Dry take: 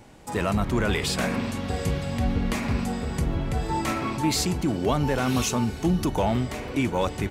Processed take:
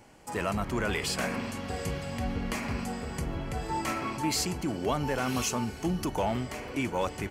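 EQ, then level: bass shelf 340 Hz -6 dB; band-stop 3.7 kHz, Q 7.2; -3.0 dB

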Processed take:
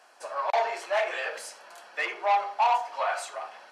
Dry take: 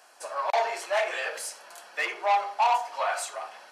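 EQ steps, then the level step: treble shelf 6.7 kHz -10.5 dB; 0.0 dB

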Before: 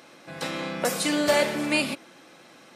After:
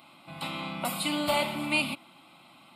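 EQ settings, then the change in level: static phaser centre 1.7 kHz, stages 6; 0.0 dB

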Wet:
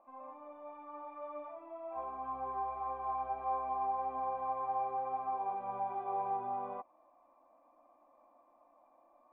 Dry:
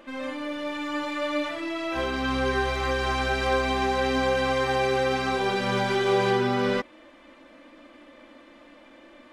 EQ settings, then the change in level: cascade formant filter a; 0.0 dB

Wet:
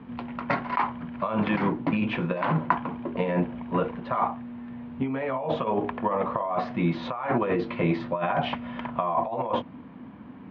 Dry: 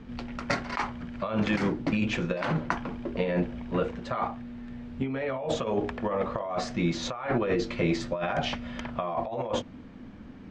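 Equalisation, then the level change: cabinet simulation 100–3300 Hz, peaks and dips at 160 Hz +4 dB, 260 Hz +3 dB, 720 Hz +3 dB, 1 kHz +10 dB; 0.0 dB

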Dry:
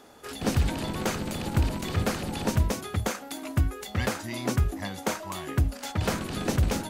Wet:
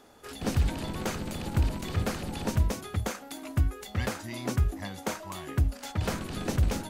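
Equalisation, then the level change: bass shelf 64 Hz +7.5 dB; -4.0 dB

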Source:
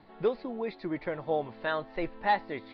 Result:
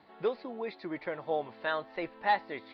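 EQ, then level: high-pass 100 Hz 6 dB/octave; bass shelf 340 Hz -7.5 dB; 0.0 dB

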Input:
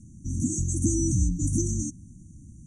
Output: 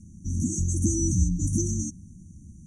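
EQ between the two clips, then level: rippled EQ curve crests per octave 0.83, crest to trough 7 dB; dynamic bell 670 Hz, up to +3 dB, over -48 dBFS, Q 1.7; 0.0 dB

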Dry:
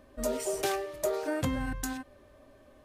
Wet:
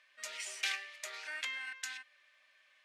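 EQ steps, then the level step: ladder band-pass 2.5 kHz, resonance 45%; treble shelf 2.1 kHz +9.5 dB; +7.5 dB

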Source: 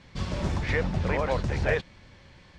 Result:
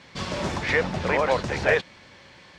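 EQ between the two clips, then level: high-pass 370 Hz 6 dB/octave; +7.0 dB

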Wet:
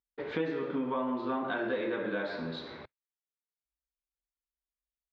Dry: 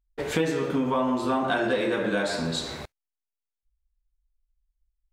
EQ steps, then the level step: distance through air 110 m; cabinet simulation 130–4000 Hz, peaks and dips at 140 Hz -5 dB, 200 Hz -3 dB, 720 Hz -5 dB, 2.8 kHz -5 dB; -6.0 dB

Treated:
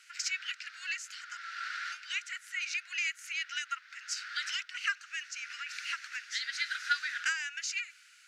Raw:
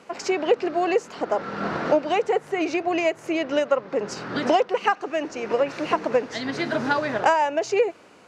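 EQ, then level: Chebyshev high-pass 1.4 kHz, order 6; treble shelf 3.7 kHz +8 dB; -4.5 dB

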